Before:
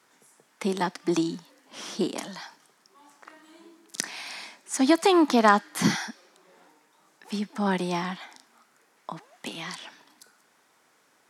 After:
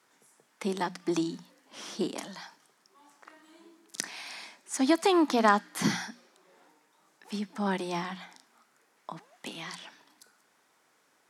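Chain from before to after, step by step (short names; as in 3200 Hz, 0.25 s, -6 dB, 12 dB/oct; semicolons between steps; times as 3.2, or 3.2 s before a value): notches 60/120/180/240 Hz; gain -4 dB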